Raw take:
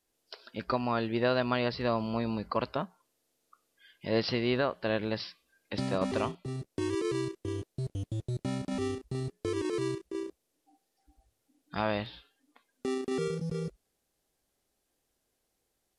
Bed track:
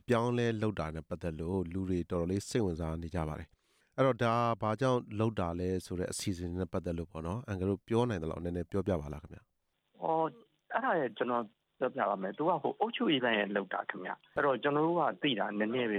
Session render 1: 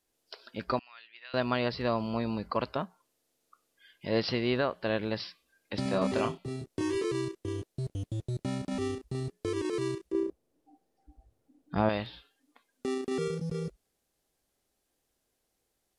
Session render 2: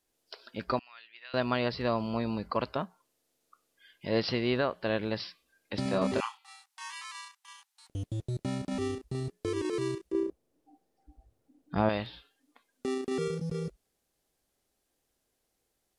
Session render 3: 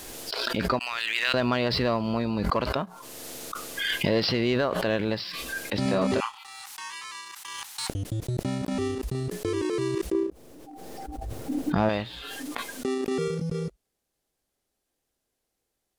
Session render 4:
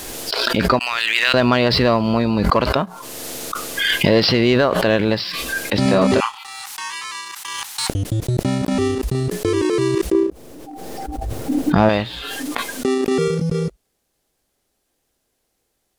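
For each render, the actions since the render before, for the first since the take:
0.79–1.34 s: ladder band-pass 2.9 kHz, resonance 30%; 5.83–7.05 s: doubling 26 ms -4 dB; 10.12–11.89 s: tilt shelf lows +8 dB, about 1.2 kHz
6.20–7.90 s: brick-wall FIR high-pass 760 Hz
waveshaping leveller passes 1; swell ahead of each attack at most 20 dB/s
trim +9.5 dB; peak limiter -1 dBFS, peak gain reduction 1.5 dB

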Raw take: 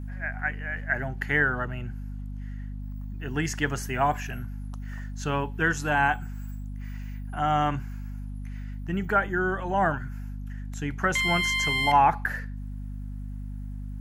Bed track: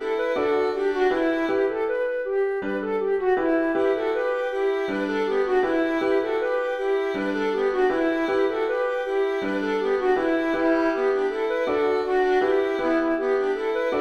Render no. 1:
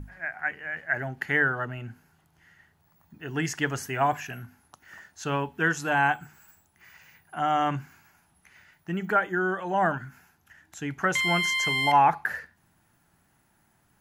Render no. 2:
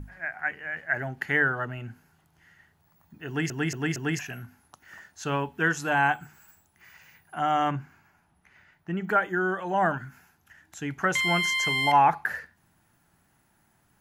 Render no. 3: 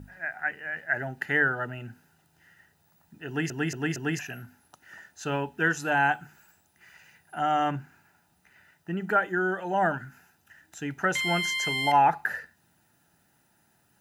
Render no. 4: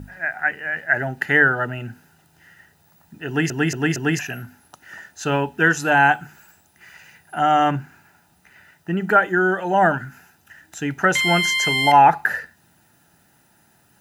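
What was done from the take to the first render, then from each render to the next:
hum notches 50/100/150/200/250 Hz
3.27 s: stutter in place 0.23 s, 4 plays; 7.70–9.07 s: treble shelf 3 kHz -> 4.5 kHz -12 dB
word length cut 12-bit, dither triangular; comb of notches 1.1 kHz
trim +8.5 dB; peak limiter -3 dBFS, peak gain reduction 0.5 dB

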